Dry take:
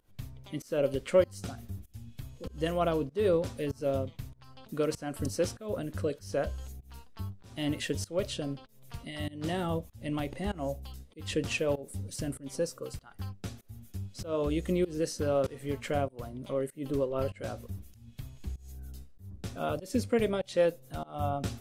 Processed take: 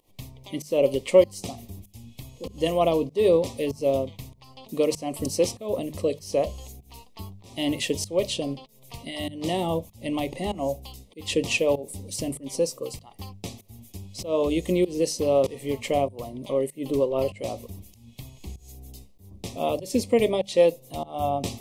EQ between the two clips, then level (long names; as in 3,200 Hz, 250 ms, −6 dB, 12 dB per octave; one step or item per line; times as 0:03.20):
Butterworth band-reject 1,500 Hz, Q 1.5
low-shelf EQ 160 Hz −10.5 dB
mains-hum notches 50/100/150/200 Hz
+8.5 dB